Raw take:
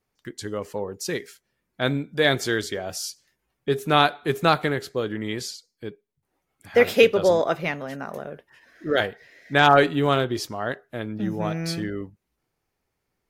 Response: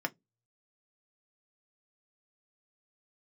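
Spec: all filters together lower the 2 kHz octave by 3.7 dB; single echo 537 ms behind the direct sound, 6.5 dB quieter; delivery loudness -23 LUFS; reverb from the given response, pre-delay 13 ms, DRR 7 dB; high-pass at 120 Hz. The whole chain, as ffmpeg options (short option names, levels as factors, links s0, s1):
-filter_complex "[0:a]highpass=120,equalizer=f=2000:t=o:g=-5,aecho=1:1:537:0.473,asplit=2[s0][s1];[1:a]atrim=start_sample=2205,adelay=13[s2];[s1][s2]afir=irnorm=-1:irlink=0,volume=0.266[s3];[s0][s3]amix=inputs=2:normalize=0"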